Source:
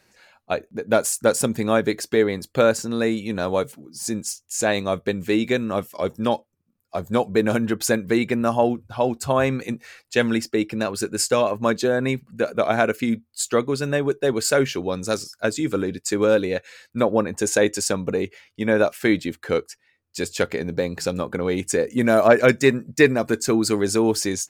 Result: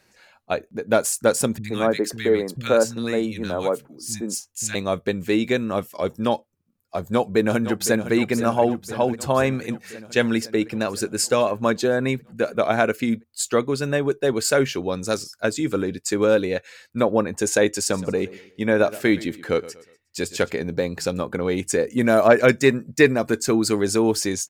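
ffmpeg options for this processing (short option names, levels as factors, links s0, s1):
-filter_complex "[0:a]asettb=1/sr,asplit=3[s0][s1][s2];[s0]atrim=end=1.584[s3];[s1]atrim=start=1.58:end=4.75,asetpts=PTS-STARTPTS,afade=t=in:d=0.004:c=qsin,afade=t=out:st=3.166:d=0.004:c=qsin,acrossover=split=180|1500[s4][s5][s6];[s6]adelay=60[s7];[s5]adelay=120[s8];[s4][s8][s7]amix=inputs=3:normalize=0,atrim=end_sample=139797[s9];[s2]atrim=start=4.746[s10];[s3][s9]acrossfade=d=0.004:c1=hsin:c2=qsin[s11];[s11][s10]acrossfade=d=0.004:c1=qsin:c2=hsin,asplit=2[s12][s13];[s13]afade=t=in:st=7.12:d=0.01,afade=t=out:st=8.13:d=0.01,aecho=0:1:510|1020|1530|2040|2550|3060|3570|4080|4590|5100:0.266073|0.186251|0.130376|0.0912629|0.063884|0.0447188|0.0313032|0.0219122|0.0153386|0.010737[s14];[s12][s14]amix=inputs=2:normalize=0,asplit=3[s15][s16][s17];[s15]afade=t=out:st=17.88:d=0.02[s18];[s16]aecho=1:1:121|242|363:0.126|0.0466|0.0172,afade=t=in:st=17.88:d=0.02,afade=t=out:st=20.49:d=0.02[s19];[s17]afade=t=in:st=20.49:d=0.02[s20];[s18][s19][s20]amix=inputs=3:normalize=0"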